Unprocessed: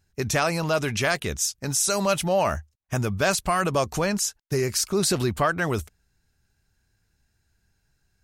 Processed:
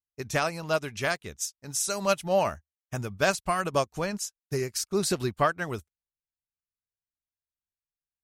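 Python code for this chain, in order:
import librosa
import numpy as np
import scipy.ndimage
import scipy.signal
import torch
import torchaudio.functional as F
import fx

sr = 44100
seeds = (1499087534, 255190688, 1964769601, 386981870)

y = fx.upward_expand(x, sr, threshold_db=-44.0, expansion=2.5)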